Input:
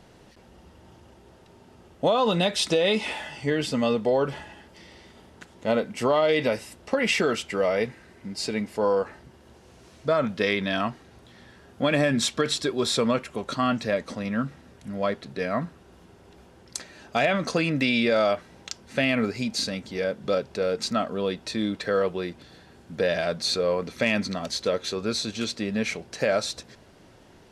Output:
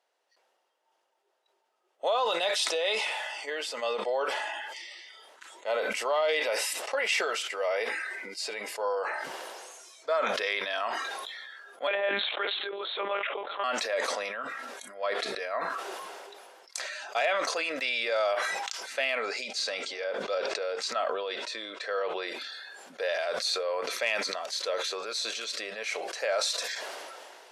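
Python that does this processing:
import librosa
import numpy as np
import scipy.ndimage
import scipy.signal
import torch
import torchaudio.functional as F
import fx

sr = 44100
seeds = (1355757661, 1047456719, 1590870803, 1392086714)

y = fx.lpc_monotone(x, sr, seeds[0], pitch_hz=200.0, order=10, at=(11.87, 13.64))
y = fx.lowpass(y, sr, hz=8200.0, slope=12, at=(19.15, 22.28))
y = fx.noise_reduce_blind(y, sr, reduce_db=16)
y = scipy.signal.sosfilt(scipy.signal.butter(4, 530.0, 'highpass', fs=sr, output='sos'), y)
y = fx.sustainer(y, sr, db_per_s=24.0)
y = F.gain(torch.from_numpy(y), -4.0).numpy()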